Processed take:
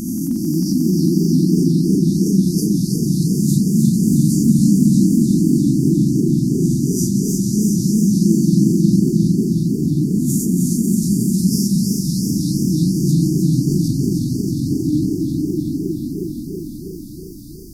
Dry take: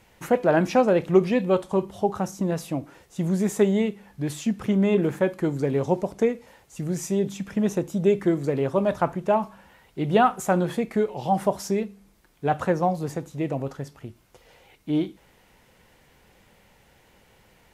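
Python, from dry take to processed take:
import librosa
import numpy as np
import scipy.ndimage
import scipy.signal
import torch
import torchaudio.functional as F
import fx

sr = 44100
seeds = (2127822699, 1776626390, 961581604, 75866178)

p1 = fx.spec_swells(x, sr, rise_s=1.06)
p2 = fx.brickwall_bandstop(p1, sr, low_hz=340.0, high_hz=4500.0)
p3 = fx.peak_eq(p2, sr, hz=7500.0, db=-5.0, octaves=0.44)
p4 = fx.over_compress(p3, sr, threshold_db=-35.0, ratio=-1.0)
p5 = p3 + F.gain(torch.from_numpy(p4), 0.5).numpy()
p6 = fx.high_shelf(p5, sr, hz=11000.0, db=3.5)
p7 = fx.echo_swell(p6, sr, ms=90, loudest=5, wet_db=-9.0)
p8 = fx.echo_warbled(p7, sr, ms=317, feedback_pct=66, rate_hz=2.8, cents=171, wet_db=-5)
y = F.gain(torch.from_numpy(p8), 3.0).numpy()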